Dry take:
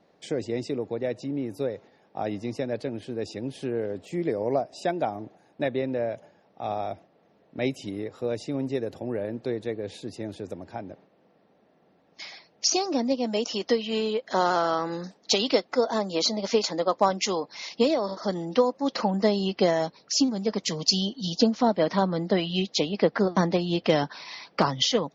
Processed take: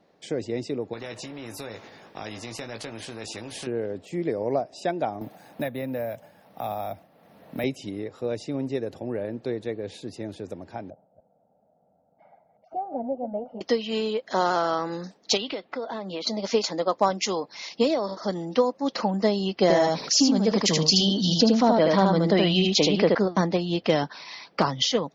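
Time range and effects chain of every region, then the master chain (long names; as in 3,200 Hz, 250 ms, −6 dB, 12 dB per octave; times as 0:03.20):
0:00.93–0:03.67: double-tracking delay 18 ms −7.5 dB + downward compressor 2 to 1, threshold −31 dBFS + every bin compressed towards the loudest bin 2 to 1
0:05.21–0:07.64: parametric band 380 Hz −10.5 dB 0.47 octaves + bad sample-rate conversion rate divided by 3×, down none, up hold + multiband upward and downward compressor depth 70%
0:10.90–0:13.61: delay that plays each chunk backwards 152 ms, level −11 dB + transistor ladder low-pass 960 Hz, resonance 30% + comb filter 1.4 ms, depth 77%
0:15.37–0:16.27: downward compressor 4 to 1, threshold −29 dBFS + high shelf with overshoot 4,600 Hz −12 dB, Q 1.5
0:19.62–0:23.15: single-tap delay 77 ms −4.5 dB + envelope flattener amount 50%
whole clip: no processing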